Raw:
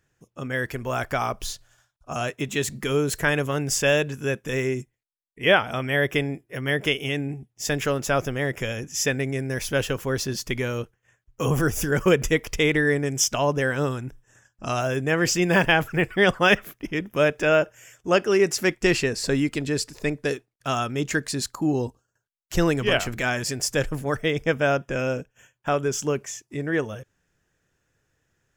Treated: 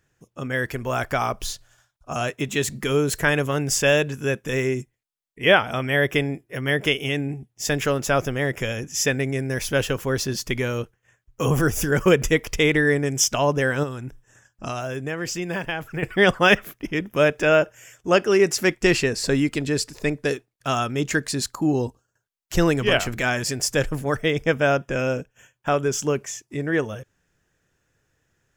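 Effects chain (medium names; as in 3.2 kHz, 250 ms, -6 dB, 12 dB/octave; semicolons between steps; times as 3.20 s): 13.83–16.03 s: compression 3:1, threshold -30 dBFS, peak gain reduction 12 dB; trim +2 dB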